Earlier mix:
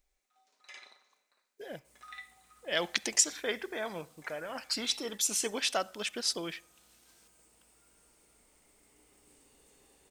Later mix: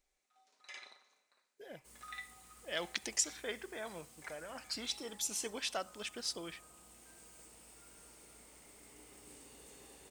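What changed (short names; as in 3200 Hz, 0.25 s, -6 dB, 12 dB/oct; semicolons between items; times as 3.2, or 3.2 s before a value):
speech -7.5 dB; second sound +7.0 dB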